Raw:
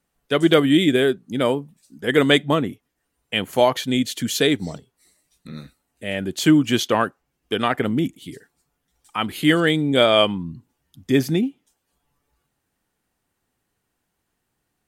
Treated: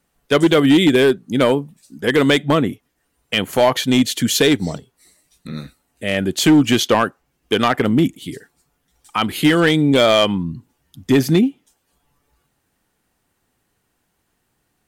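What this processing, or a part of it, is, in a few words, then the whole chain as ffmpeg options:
limiter into clipper: -af "alimiter=limit=-8.5dB:level=0:latency=1:release=146,asoftclip=type=hard:threshold=-13.5dB,volume=6.5dB"

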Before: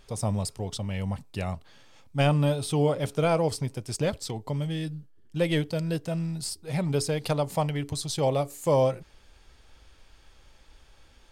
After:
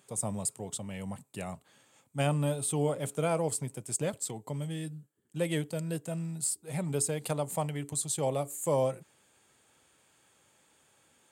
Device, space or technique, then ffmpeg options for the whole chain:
budget condenser microphone: -af "highpass=f=120:w=0.5412,highpass=f=120:w=1.3066,highshelf=f=6.4k:t=q:w=3:g=6.5,volume=-5.5dB"

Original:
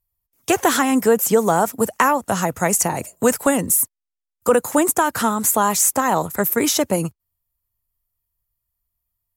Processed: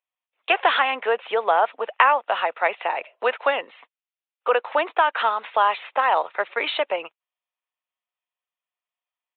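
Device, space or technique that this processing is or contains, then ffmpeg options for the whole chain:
musical greeting card: -af "aresample=8000,aresample=44100,highpass=f=550:w=0.5412,highpass=f=550:w=1.3066,equalizer=f=2.6k:t=o:w=0.58:g=6.5"

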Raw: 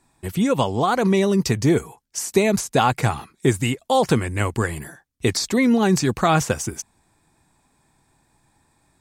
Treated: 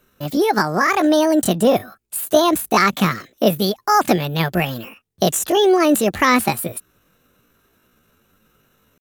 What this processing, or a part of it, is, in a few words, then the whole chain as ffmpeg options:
chipmunk voice: -af "asetrate=70004,aresample=44100,atempo=0.629961,volume=3dB"

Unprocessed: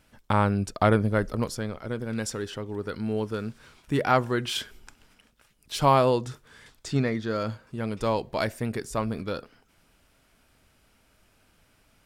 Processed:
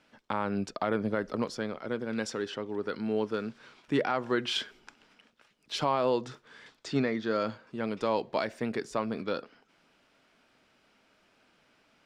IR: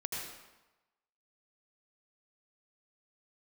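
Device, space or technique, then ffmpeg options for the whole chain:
DJ mixer with the lows and highs turned down: -filter_complex "[0:a]acrossover=split=170 6100:gain=0.1 1 0.1[a][b][c];[a][b][c]amix=inputs=3:normalize=0,alimiter=limit=-16.5dB:level=0:latency=1:release=142"

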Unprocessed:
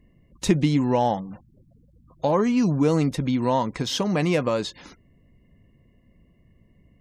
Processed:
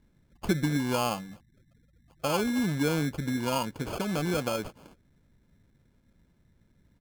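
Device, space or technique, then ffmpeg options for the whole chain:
crushed at another speed: -af "asetrate=35280,aresample=44100,acrusher=samples=29:mix=1:aa=0.000001,asetrate=55125,aresample=44100,volume=-7dB"

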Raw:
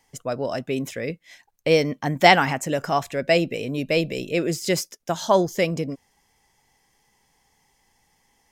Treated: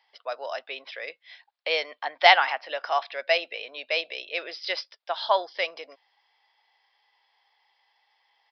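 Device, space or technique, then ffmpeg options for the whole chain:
musical greeting card: -af "aresample=11025,aresample=44100,highpass=f=660:w=0.5412,highpass=f=660:w=1.3066,equalizer=f=3.5k:t=o:w=0.4:g=5,volume=-1dB"

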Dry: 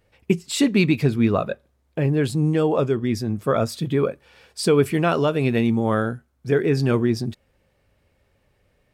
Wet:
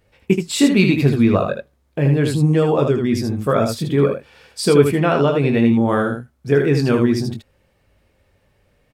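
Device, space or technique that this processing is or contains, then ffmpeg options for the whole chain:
slapback doubling: -filter_complex "[0:a]asplit=3[a][b][c];[b]adelay=21,volume=-8dB[d];[c]adelay=78,volume=-5.5dB[e];[a][d][e]amix=inputs=3:normalize=0,asettb=1/sr,asplit=3[f][g][h];[f]atrim=end=4.914[i];[g]atrim=start=4.91:end=5.89,asetpts=PTS-STARTPTS,afade=t=in:d=0.004:c=qsin,afade=t=out:st=0.976:d=0.004:c=qsin,highshelf=f=5k:g=-9.5[j];[h]atrim=start=5.886[k];[i][j]acrossfade=d=0.004:c1=hsin:c2=qsin[l];[l][k]acrossfade=d=0.004:c1=qsin:c2=hsin,volume=2.5dB"

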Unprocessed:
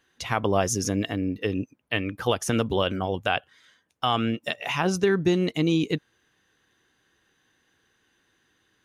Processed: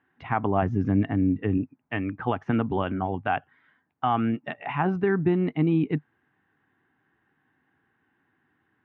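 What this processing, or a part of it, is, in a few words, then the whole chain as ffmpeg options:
bass cabinet: -filter_complex "[0:a]highpass=84,equalizer=f=97:t=q:w=4:g=3,equalizer=f=150:t=q:w=4:g=5,equalizer=f=260:t=q:w=4:g=6,equalizer=f=520:t=q:w=4:g=-9,equalizer=f=810:t=q:w=4:g=6,lowpass=f=2.1k:w=0.5412,lowpass=f=2.1k:w=1.3066,asettb=1/sr,asplit=3[a][b][c];[a]atrim=end=0.624[d];[b]atrim=start=0.62:end=1.58,asetpts=PTS-STARTPTS,afade=t=in:d=0.004:c=qsin,afade=t=out:st=0.956:d=0.004:c=qsin,bass=f=250:g=6,treble=f=4k:g=-4[e];[c]atrim=start=1.576[f];[d][e]acrossfade=d=0.004:c1=hsin:c2=qsin[g];[g][f]acrossfade=d=0.004:c1=qsin:c2=hsin,volume=-1.5dB"

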